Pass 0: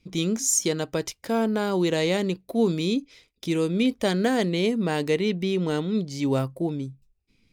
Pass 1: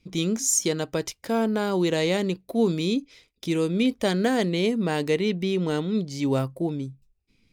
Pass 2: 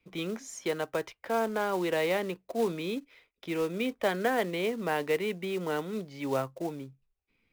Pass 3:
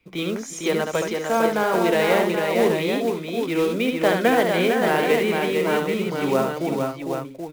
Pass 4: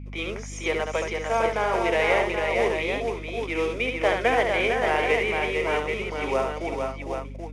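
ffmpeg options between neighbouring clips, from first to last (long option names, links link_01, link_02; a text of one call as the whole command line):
ffmpeg -i in.wav -af anull out.wav
ffmpeg -i in.wav -filter_complex "[0:a]acrossover=split=470 2800:gain=0.224 1 0.0631[link_01][link_02][link_03];[link_01][link_02][link_03]amix=inputs=3:normalize=0,acrossover=split=230|5500[link_04][link_05][link_06];[link_05]acrusher=bits=4:mode=log:mix=0:aa=0.000001[link_07];[link_04][link_07][link_06]amix=inputs=3:normalize=0" out.wav
ffmpeg -i in.wav -af "aecho=1:1:71|348|453|509|781:0.562|0.112|0.596|0.282|0.473,volume=7.5dB" out.wav
ffmpeg -i in.wav -af "highpass=480,equalizer=frequency=1500:width_type=q:width=4:gain=-5,equalizer=frequency=2200:width_type=q:width=4:gain=6,equalizer=frequency=4100:width_type=q:width=4:gain=-10,equalizer=frequency=7700:width_type=q:width=4:gain=-9,lowpass=frequency=8600:width=0.5412,lowpass=frequency=8600:width=1.3066,aeval=exprs='val(0)+0.0178*(sin(2*PI*50*n/s)+sin(2*PI*2*50*n/s)/2+sin(2*PI*3*50*n/s)/3+sin(2*PI*4*50*n/s)/4+sin(2*PI*5*50*n/s)/5)':channel_layout=same,volume=-1dB" out.wav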